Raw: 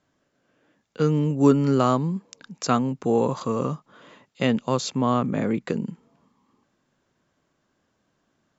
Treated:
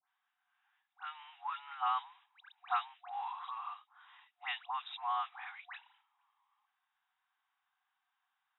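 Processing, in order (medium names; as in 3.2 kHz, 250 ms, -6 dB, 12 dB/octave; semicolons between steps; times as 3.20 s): modulation noise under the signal 28 dB; FFT band-pass 720–3900 Hz; phase dispersion highs, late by 89 ms, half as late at 1.9 kHz; trim -8 dB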